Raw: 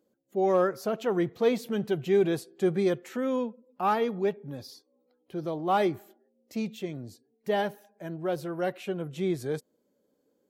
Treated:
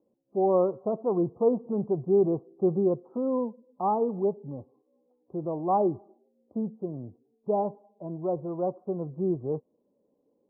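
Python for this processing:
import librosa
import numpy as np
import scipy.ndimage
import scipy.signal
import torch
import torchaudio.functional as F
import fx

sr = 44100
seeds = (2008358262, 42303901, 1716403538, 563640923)

y = scipy.signal.sosfilt(scipy.signal.butter(12, 1100.0, 'lowpass', fs=sr, output='sos'), x)
y = F.gain(torch.from_numpy(y), 1.0).numpy()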